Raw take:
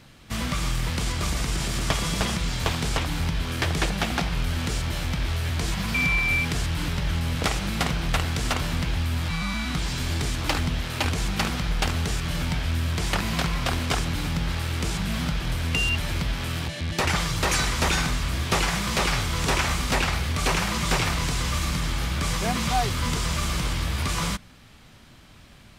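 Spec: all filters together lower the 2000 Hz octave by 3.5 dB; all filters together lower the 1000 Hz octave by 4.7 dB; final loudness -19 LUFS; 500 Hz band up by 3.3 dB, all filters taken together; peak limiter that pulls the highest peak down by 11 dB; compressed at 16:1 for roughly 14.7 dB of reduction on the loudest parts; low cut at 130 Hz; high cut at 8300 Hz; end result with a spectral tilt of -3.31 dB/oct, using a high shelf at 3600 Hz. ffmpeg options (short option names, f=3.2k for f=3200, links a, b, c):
-af "highpass=130,lowpass=8.3k,equalizer=f=500:t=o:g=6.5,equalizer=f=1k:t=o:g=-8,equalizer=f=2k:t=o:g=-5,highshelf=f=3.6k:g=6.5,acompressor=threshold=-35dB:ratio=16,volume=20.5dB,alimiter=limit=-10dB:level=0:latency=1"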